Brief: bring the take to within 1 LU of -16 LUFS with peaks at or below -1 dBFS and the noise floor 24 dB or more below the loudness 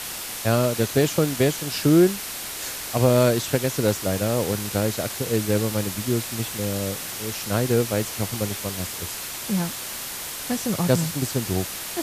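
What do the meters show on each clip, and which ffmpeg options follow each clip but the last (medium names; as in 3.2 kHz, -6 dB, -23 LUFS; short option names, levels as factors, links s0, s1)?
noise floor -33 dBFS; noise floor target -48 dBFS; loudness -23.5 LUFS; peak level -5.5 dBFS; loudness target -16.0 LUFS
-> -af "afftdn=nr=15:nf=-33"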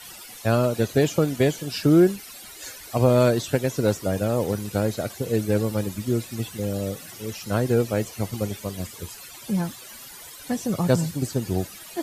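noise floor -42 dBFS; noise floor target -48 dBFS
-> -af "afftdn=nr=6:nf=-42"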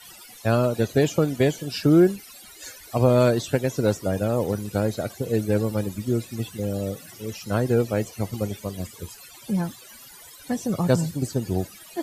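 noise floor -46 dBFS; noise floor target -48 dBFS
-> -af "afftdn=nr=6:nf=-46"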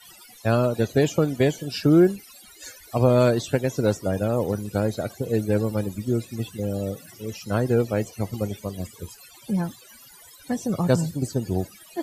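noise floor -49 dBFS; loudness -24.0 LUFS; peak level -5.5 dBFS; loudness target -16.0 LUFS
-> -af "volume=2.51,alimiter=limit=0.891:level=0:latency=1"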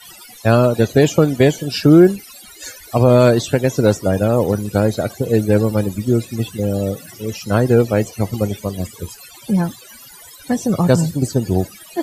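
loudness -16.5 LUFS; peak level -1.0 dBFS; noise floor -41 dBFS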